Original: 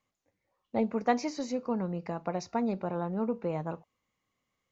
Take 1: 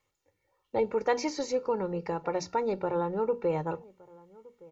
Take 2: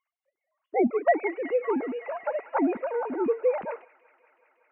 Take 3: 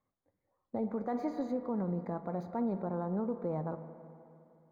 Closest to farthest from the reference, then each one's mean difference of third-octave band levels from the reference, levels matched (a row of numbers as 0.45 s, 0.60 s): 1, 3, 2; 2.5 dB, 5.0 dB, 10.0 dB